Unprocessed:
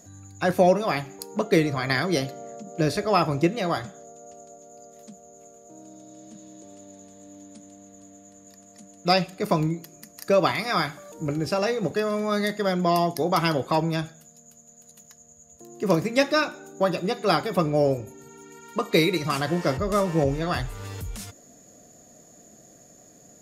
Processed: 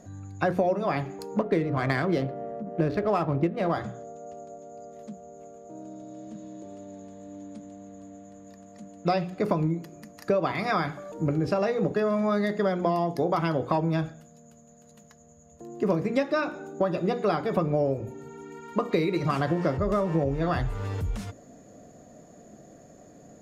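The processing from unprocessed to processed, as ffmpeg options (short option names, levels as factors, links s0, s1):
-filter_complex "[0:a]asettb=1/sr,asplit=3[s0][s1][s2];[s0]atrim=end=1.394[s3];[s1]atrim=start=1.39:end=3.72,asetpts=PTS-STARTPTS,afade=t=in:d=0.004:c=qsin,afade=t=out:st=2.326:d=0.004:c=qsin,adynamicsmooth=sensitivity=5:basefreq=1200[s4];[s2]atrim=start=3.716[s5];[s3][s4]acrossfade=d=0.004:c1=hsin:c2=qsin[s6];[s6][s5]acrossfade=d=0.004:c1=qsin:c2=hsin,lowpass=f=1200:p=1,bandreject=f=60:t=h:w=6,bandreject=f=120:t=h:w=6,bandreject=f=180:t=h:w=6,bandreject=f=240:t=h:w=6,bandreject=f=300:t=h:w=6,bandreject=f=360:t=h:w=6,bandreject=f=420:t=h:w=6,bandreject=f=480:t=h:w=6,acompressor=threshold=0.0447:ratio=6,volume=1.88"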